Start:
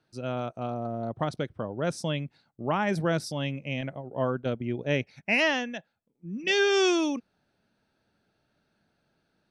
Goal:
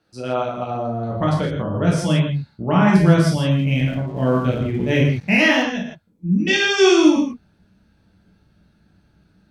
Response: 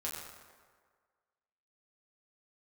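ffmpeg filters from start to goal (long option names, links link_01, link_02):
-filter_complex "[0:a]asubboost=boost=4.5:cutoff=240[link_01];[1:a]atrim=start_sample=2205,atrim=end_sample=6174,asetrate=35280,aresample=44100[link_02];[link_01][link_02]afir=irnorm=-1:irlink=0,asettb=1/sr,asplit=3[link_03][link_04][link_05];[link_03]atrim=end=3.514[link_06];[link_04]atrim=start=3.51:end=5.63,asetpts=PTS-STARTPTS,afade=type=in:duration=0.004:curve=qsin,afade=type=out:start_time=2.116:duration=0.004:curve=qsin,aeval=exprs='sgn(val(0))*max(abs(val(0))-0.00251,0)':channel_layout=same[link_07];[link_05]atrim=start=5.626[link_08];[link_06][link_07]acrossfade=duration=0.004:curve1=hsin:curve2=qsin[link_09];[link_09][link_08]acrossfade=duration=0.004:curve1=qsin:curve2=hsin,volume=7dB"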